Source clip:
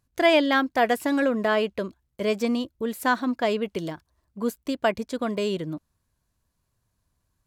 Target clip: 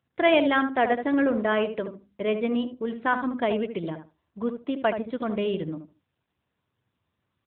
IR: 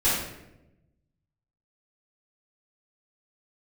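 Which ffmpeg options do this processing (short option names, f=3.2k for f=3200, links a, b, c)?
-filter_complex "[0:a]asplit=3[a][b][c];[a]afade=t=out:st=1.32:d=0.02[d];[b]bandreject=f=50:t=h:w=6,bandreject=f=100:t=h:w=6,bandreject=f=150:t=h:w=6,bandreject=f=200:t=h:w=6,bandreject=f=250:t=h:w=6,bandreject=f=300:t=h:w=6,afade=t=in:st=1.32:d=0.02,afade=t=out:st=3.36:d=0.02[e];[c]afade=t=in:st=3.36:d=0.02[f];[d][e][f]amix=inputs=3:normalize=0,asplit=2[g][h];[h]adelay=75,lowpass=f=1.3k:p=1,volume=-7dB,asplit=2[i][j];[j]adelay=75,lowpass=f=1.3k:p=1,volume=0.2,asplit=2[k][l];[l]adelay=75,lowpass=f=1.3k:p=1,volume=0.2[m];[g][i][k][m]amix=inputs=4:normalize=0,volume=-1dB" -ar 8000 -c:a libopencore_amrnb -b:a 10200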